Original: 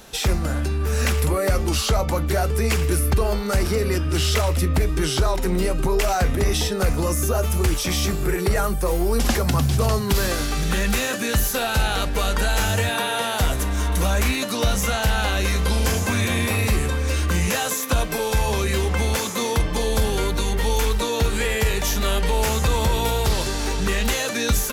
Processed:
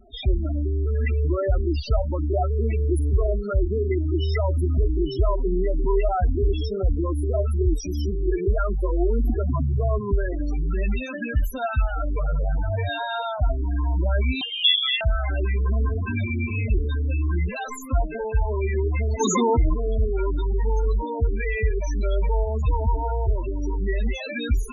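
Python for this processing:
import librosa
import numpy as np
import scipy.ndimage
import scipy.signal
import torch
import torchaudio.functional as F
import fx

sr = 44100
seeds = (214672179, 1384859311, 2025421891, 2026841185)

y = fx.tracing_dist(x, sr, depth_ms=0.02)
y = y + 0.47 * np.pad(y, (int(3.0 * sr / 1000.0), 0))[:len(y)]
y = fx.schmitt(y, sr, flips_db=-37.5, at=(12.16, 12.63))
y = fx.spec_topn(y, sr, count=8)
y = fx.freq_invert(y, sr, carrier_hz=3400, at=(14.41, 15.01))
y = fx.env_flatten(y, sr, amount_pct=70, at=(19.19, 19.73), fade=0.02)
y = y * librosa.db_to_amplitude(-2.0)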